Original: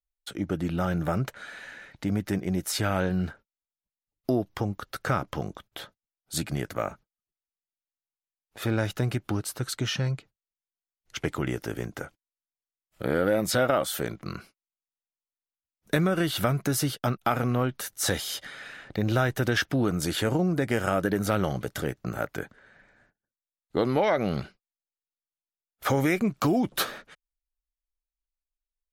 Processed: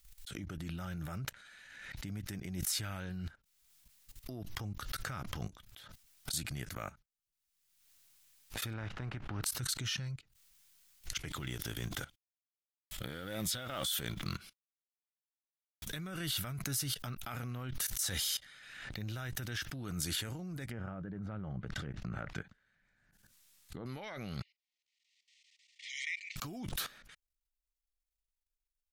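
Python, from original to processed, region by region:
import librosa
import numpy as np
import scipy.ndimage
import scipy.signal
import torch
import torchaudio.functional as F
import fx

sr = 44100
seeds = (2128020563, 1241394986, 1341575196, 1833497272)

y = fx.spec_flatten(x, sr, power=0.64, at=(8.72, 9.43), fade=0.02)
y = fx.lowpass(y, sr, hz=1400.0, slope=12, at=(8.72, 9.43), fade=0.02)
y = fx.chain(y, sr, fx.law_mismatch(coded='mu'),
    fx.peak_eq(hz=3400.0, db=10.0, octaves=0.26), at=(11.29, 15.96))
y = fx.chain(y, sr, fx.peak_eq(hz=180.0, db=5.0, octaves=0.59),
    fx.env_lowpass_down(base_hz=1100.0, full_db=-23.0), at=(20.69, 23.86))
y = fx.chain(y, sr, fx.brickwall_bandpass(low_hz=1800.0, high_hz=9500.0),
    fx.air_absorb(metres=170.0), at=(24.42, 26.36))
y = fx.level_steps(y, sr, step_db=18)
y = fx.peak_eq(y, sr, hz=490.0, db=-14.5, octaves=3.0)
y = fx.pre_swell(y, sr, db_per_s=40.0)
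y = y * 10.0 ** (2.5 / 20.0)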